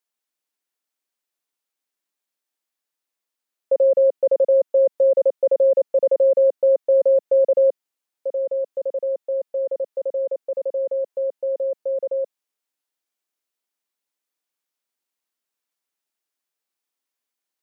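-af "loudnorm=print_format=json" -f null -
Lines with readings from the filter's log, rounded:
"input_i" : "-20.2",
"input_tp" : "-11.2",
"input_lra" : "11.1",
"input_thresh" : "-30.4",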